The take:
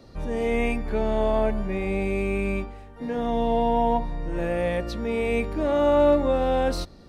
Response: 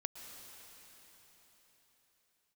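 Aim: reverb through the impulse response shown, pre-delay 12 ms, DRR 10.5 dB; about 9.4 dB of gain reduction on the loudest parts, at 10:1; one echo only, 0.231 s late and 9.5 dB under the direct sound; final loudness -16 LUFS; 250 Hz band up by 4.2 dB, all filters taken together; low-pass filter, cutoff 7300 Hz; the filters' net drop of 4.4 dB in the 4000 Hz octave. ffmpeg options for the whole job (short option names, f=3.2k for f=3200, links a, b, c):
-filter_complex "[0:a]lowpass=7.3k,equalizer=f=250:t=o:g=5,equalizer=f=4k:t=o:g=-5.5,acompressor=threshold=-23dB:ratio=10,aecho=1:1:231:0.335,asplit=2[a][b];[1:a]atrim=start_sample=2205,adelay=12[c];[b][c]afir=irnorm=-1:irlink=0,volume=-9dB[d];[a][d]amix=inputs=2:normalize=0,volume=12dB"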